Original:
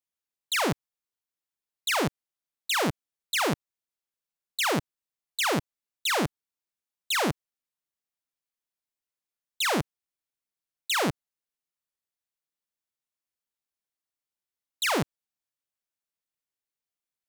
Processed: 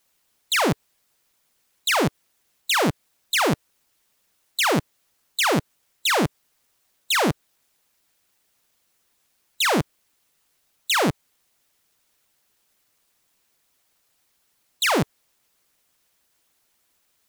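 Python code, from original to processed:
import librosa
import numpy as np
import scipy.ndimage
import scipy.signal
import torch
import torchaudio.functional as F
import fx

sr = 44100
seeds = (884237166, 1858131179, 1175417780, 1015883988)

y = fx.quant_dither(x, sr, seeds[0], bits=12, dither='triangular')
y = fx.hpss(y, sr, part='percussive', gain_db=6)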